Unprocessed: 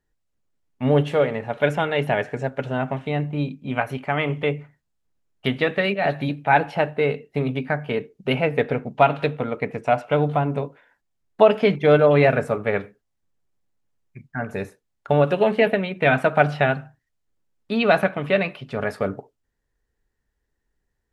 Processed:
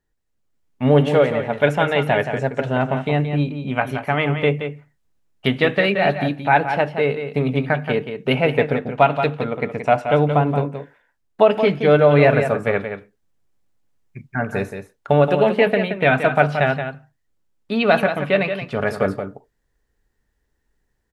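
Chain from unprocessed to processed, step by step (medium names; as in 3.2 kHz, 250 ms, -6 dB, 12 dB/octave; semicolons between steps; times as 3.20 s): level rider gain up to 5 dB; on a send: delay 175 ms -8.5 dB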